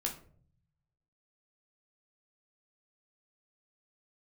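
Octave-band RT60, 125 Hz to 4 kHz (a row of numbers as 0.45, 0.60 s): 1.4, 0.95, 0.60, 0.40, 0.35, 0.30 s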